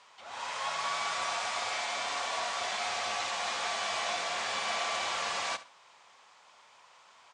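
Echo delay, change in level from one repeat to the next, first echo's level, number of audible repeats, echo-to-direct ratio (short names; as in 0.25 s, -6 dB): 69 ms, -12.5 dB, -16.0 dB, 2, -16.0 dB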